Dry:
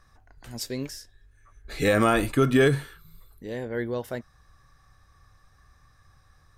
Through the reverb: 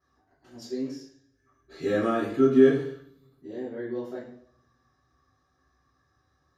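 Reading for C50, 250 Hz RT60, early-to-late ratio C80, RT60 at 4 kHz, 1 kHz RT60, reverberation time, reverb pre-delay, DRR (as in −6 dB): 4.5 dB, 0.65 s, 8.0 dB, 0.65 s, 0.55 s, 0.60 s, 3 ms, −14.0 dB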